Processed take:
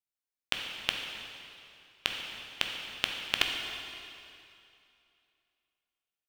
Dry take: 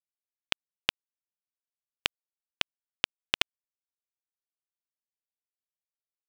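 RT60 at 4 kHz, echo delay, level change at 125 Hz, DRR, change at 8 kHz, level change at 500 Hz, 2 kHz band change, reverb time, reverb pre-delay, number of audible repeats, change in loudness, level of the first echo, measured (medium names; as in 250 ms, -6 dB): 2.4 s, no echo, +0.5 dB, 1.5 dB, 0.0 dB, 0.0 dB, +0.5 dB, 2.6 s, 6 ms, no echo, -1.5 dB, no echo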